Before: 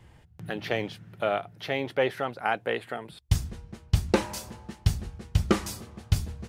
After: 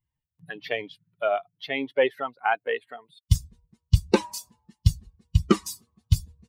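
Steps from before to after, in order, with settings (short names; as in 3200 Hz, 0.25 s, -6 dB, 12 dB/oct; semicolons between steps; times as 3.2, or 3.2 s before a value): per-bin expansion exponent 2; gain +6 dB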